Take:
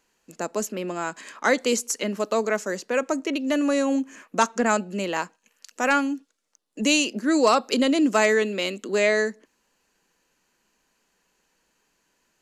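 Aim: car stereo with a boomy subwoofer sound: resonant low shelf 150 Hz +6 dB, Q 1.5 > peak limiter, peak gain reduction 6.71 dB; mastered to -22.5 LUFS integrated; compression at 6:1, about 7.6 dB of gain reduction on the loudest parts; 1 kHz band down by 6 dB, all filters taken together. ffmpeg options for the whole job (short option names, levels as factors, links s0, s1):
-af "equalizer=f=1000:t=o:g=-8,acompressor=threshold=0.0562:ratio=6,lowshelf=f=150:t=q:w=1.5:g=6,volume=2.99,alimiter=limit=0.299:level=0:latency=1"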